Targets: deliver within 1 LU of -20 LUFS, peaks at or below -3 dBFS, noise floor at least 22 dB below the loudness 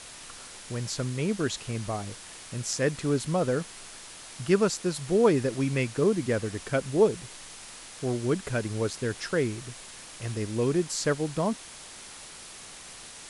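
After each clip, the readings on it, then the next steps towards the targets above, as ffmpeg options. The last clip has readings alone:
noise floor -45 dBFS; noise floor target -51 dBFS; loudness -28.5 LUFS; peak -9.5 dBFS; loudness target -20.0 LUFS
-> -af "afftdn=nr=6:nf=-45"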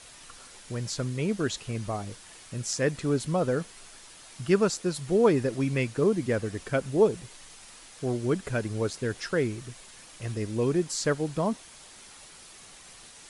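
noise floor -50 dBFS; noise floor target -51 dBFS
-> -af "afftdn=nr=6:nf=-50"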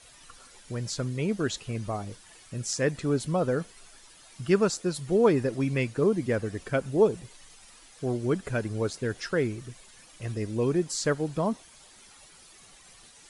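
noise floor -54 dBFS; loudness -28.5 LUFS; peak -9.5 dBFS; loudness target -20.0 LUFS
-> -af "volume=8.5dB,alimiter=limit=-3dB:level=0:latency=1"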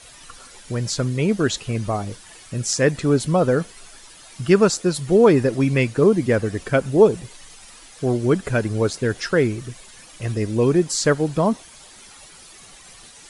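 loudness -20.0 LUFS; peak -3.0 dBFS; noise floor -45 dBFS

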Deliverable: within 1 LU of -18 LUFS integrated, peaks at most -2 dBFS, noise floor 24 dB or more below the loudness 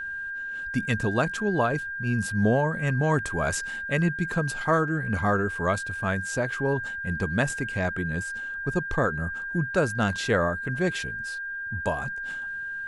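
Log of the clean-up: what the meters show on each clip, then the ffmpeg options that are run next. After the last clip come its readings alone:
steady tone 1600 Hz; tone level -31 dBFS; loudness -27.0 LUFS; peak -10.0 dBFS; loudness target -18.0 LUFS
-> -af "bandreject=f=1.6k:w=30"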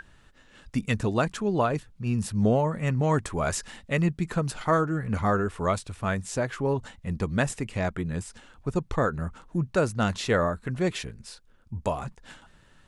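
steady tone none; loudness -28.0 LUFS; peak -10.0 dBFS; loudness target -18.0 LUFS
-> -af "volume=10dB,alimiter=limit=-2dB:level=0:latency=1"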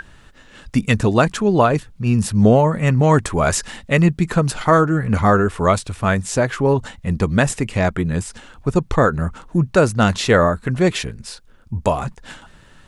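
loudness -18.0 LUFS; peak -2.0 dBFS; noise floor -47 dBFS

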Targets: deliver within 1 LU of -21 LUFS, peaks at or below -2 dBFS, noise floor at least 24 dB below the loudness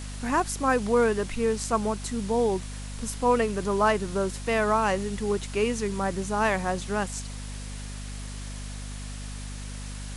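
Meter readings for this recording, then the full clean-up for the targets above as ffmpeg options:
hum 50 Hz; harmonics up to 250 Hz; hum level -35 dBFS; noise floor -37 dBFS; noise floor target -51 dBFS; loudness -26.5 LUFS; peak -10.5 dBFS; loudness target -21.0 LUFS
-> -af "bandreject=f=50:t=h:w=6,bandreject=f=100:t=h:w=6,bandreject=f=150:t=h:w=6,bandreject=f=200:t=h:w=6,bandreject=f=250:t=h:w=6"
-af "afftdn=nr=14:nf=-37"
-af "volume=5.5dB"

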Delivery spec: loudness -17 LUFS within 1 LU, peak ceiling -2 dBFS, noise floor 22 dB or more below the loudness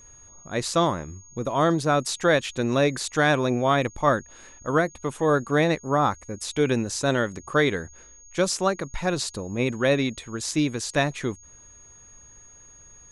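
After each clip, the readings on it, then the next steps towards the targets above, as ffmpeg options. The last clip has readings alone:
steady tone 6600 Hz; tone level -48 dBFS; loudness -24.5 LUFS; peak -6.5 dBFS; loudness target -17.0 LUFS
-> -af "bandreject=f=6.6k:w=30"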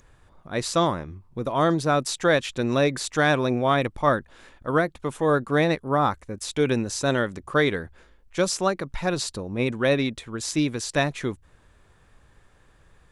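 steady tone none; loudness -24.5 LUFS; peak -6.5 dBFS; loudness target -17.0 LUFS
-> -af "volume=7.5dB,alimiter=limit=-2dB:level=0:latency=1"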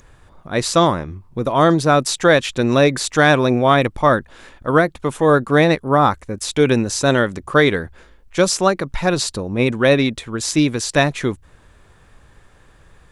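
loudness -17.0 LUFS; peak -2.0 dBFS; noise floor -50 dBFS

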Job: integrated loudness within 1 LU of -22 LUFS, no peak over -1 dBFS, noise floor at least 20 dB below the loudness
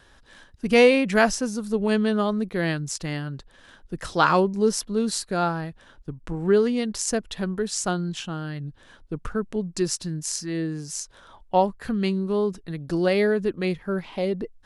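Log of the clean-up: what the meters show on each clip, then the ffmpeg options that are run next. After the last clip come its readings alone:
loudness -24.5 LUFS; peak -5.0 dBFS; loudness target -22.0 LUFS
-> -af "volume=2.5dB"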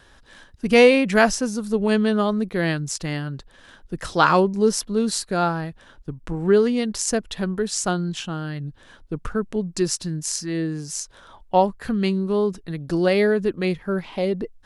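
loudness -22.0 LUFS; peak -2.5 dBFS; noise floor -52 dBFS

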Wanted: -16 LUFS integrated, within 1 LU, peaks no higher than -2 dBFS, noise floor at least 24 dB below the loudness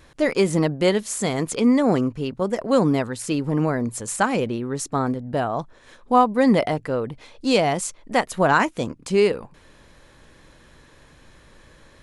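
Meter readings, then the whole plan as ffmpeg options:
loudness -22.0 LUFS; peak -5.0 dBFS; loudness target -16.0 LUFS
-> -af "volume=6dB,alimiter=limit=-2dB:level=0:latency=1"

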